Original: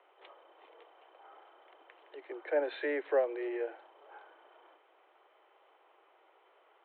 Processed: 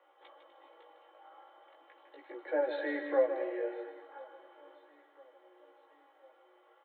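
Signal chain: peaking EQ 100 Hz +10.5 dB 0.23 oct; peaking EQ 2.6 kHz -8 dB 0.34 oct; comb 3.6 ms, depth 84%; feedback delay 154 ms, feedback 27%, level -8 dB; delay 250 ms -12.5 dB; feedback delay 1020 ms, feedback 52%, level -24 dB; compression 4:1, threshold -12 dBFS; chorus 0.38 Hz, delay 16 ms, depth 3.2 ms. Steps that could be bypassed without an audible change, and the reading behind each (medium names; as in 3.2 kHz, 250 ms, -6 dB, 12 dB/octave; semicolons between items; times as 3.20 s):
peaking EQ 100 Hz: input has nothing below 250 Hz; compression, threshold -12 dBFS: peak at its input -13.5 dBFS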